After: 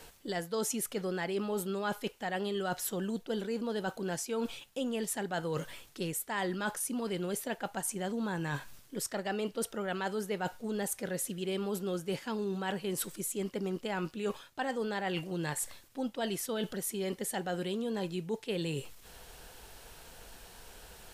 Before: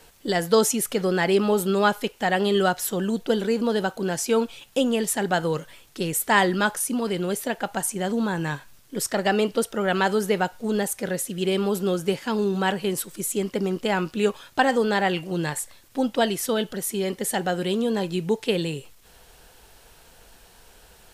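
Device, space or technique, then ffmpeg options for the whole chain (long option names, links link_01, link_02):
compression on the reversed sound: -af "areverse,acompressor=threshold=-33dB:ratio=5,areverse"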